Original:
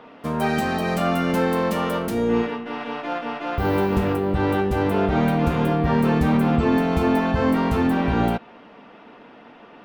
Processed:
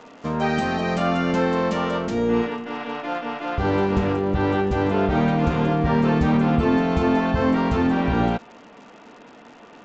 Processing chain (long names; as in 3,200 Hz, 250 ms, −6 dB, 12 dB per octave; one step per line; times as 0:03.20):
surface crackle 150 per second −38 dBFS
downsampling to 16,000 Hz